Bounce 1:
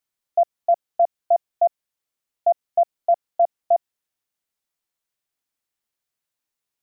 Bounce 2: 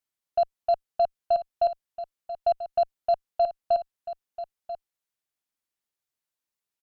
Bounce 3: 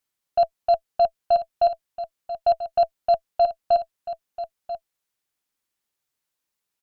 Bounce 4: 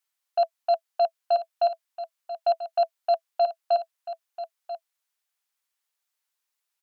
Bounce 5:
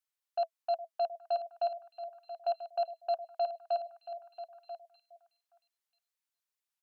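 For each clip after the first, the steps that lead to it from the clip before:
Chebyshev shaper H 6 -27 dB, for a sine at -11 dBFS; delay 988 ms -12.5 dB; trim -5 dB
band-stop 660 Hz, Q 19; trim +6 dB
high-pass 720 Hz 12 dB/octave
repeats whose band climbs or falls 412 ms, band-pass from 490 Hz, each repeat 1.4 oct, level -11 dB; trim -9 dB

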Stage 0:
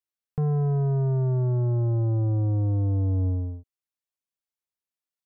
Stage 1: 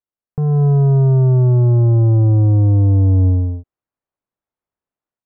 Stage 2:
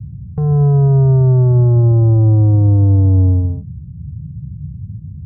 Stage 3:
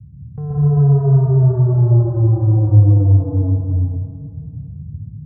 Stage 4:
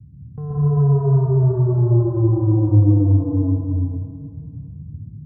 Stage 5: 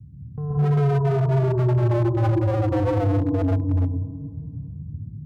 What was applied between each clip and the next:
low-pass 1.2 kHz 12 dB/octave; dynamic bell 570 Hz, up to -3 dB, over -40 dBFS, Q 0.89; level rider gain up to 9 dB; trim +3 dB
band noise 64–160 Hz -30 dBFS; trim +1.5 dB
plate-style reverb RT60 2.2 s, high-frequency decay 0.75×, pre-delay 110 ms, DRR -6.5 dB; trim -10.5 dB
small resonant body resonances 310/1000 Hz, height 10 dB, ringing for 25 ms; trim -4.5 dB
wavefolder -15 dBFS

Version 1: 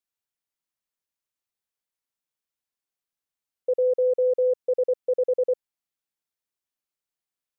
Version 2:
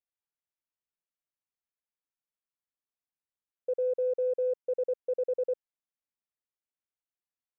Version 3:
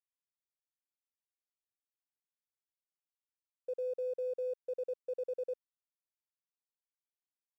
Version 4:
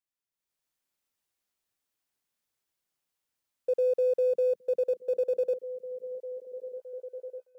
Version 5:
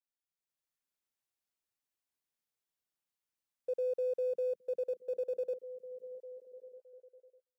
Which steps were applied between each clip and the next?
local Wiener filter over 9 samples; trim -7 dB
crossover distortion -57 dBFS; trim -7.5 dB
repeats whose band climbs or falls 616 ms, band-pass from 160 Hz, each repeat 0.7 oct, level -7.5 dB; level rider gain up to 11 dB
fade out at the end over 1.57 s; trim -8 dB

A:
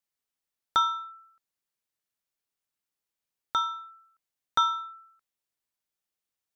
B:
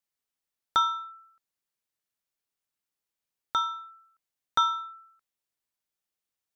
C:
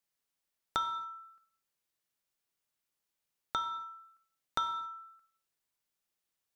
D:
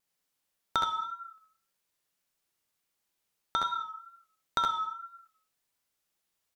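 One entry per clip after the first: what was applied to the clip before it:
no audible change
compression 2.5:1, threshold -37 dBFS, peak gain reduction 11.5 dB; gated-style reverb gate 300 ms falling, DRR 8.5 dB; trim +1 dB
wow and flutter 54 cents; on a send: early reflections 66 ms -5.5 dB, 77 ms -7.5 dB; on the sum: trim +3.5 dB

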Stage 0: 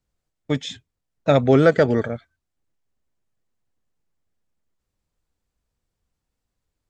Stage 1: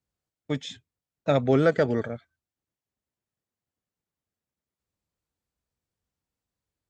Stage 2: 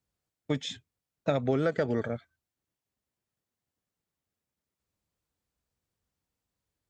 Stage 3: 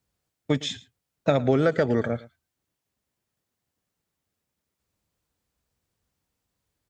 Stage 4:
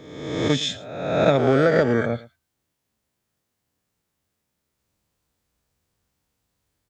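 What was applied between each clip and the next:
high-pass 67 Hz; trim -6 dB
compression 6:1, threshold -25 dBFS, peak gain reduction 9.5 dB; trim +1.5 dB
delay 111 ms -20 dB; trim +6 dB
reverse spectral sustain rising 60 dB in 1.11 s; trim +1.5 dB

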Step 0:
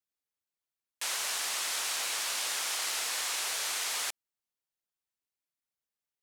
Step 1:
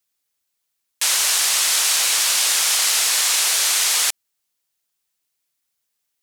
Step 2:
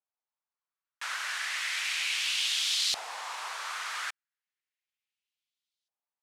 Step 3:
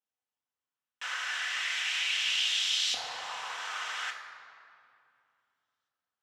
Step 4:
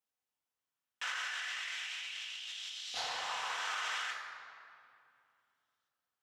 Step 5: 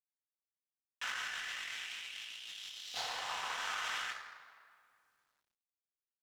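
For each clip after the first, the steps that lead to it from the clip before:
treble shelf 2.4 kHz +8.5 dB; trim +8.5 dB
LFO band-pass saw up 0.34 Hz 760–4000 Hz; trim -3.5 dB
reverberation RT60 2.6 s, pre-delay 3 ms, DRR 1.5 dB; trim -8 dB
compressor with a negative ratio -37 dBFS, ratio -1; trim -3.5 dB
companding laws mixed up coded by A; trim +1.5 dB

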